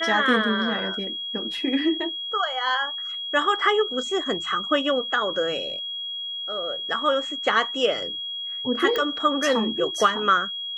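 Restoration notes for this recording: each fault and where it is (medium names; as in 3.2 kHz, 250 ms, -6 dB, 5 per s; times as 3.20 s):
whine 3.3 kHz -29 dBFS
8.96 s: pop -13 dBFS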